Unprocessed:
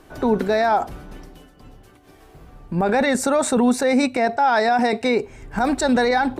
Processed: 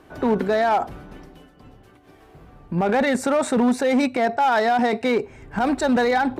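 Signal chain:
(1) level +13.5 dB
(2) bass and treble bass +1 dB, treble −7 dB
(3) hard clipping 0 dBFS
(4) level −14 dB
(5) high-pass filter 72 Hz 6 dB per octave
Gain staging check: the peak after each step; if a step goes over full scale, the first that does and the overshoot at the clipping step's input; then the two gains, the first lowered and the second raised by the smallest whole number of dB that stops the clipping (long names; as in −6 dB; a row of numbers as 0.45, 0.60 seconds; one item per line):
+4.5, +4.5, 0.0, −14.0, −11.5 dBFS
step 1, 4.5 dB
step 1 +8.5 dB, step 4 −9 dB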